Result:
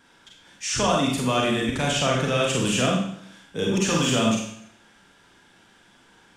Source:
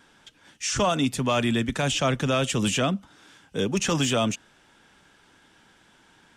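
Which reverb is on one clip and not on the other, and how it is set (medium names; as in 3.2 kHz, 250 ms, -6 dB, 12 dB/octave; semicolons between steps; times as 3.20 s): Schroeder reverb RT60 0.66 s, combs from 32 ms, DRR -2 dB; trim -2 dB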